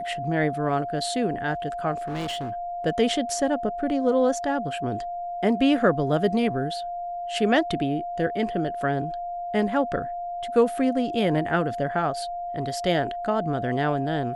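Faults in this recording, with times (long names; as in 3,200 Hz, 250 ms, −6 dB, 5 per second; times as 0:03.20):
whistle 700 Hz −29 dBFS
0:01.97–0:02.52: clipping −26.5 dBFS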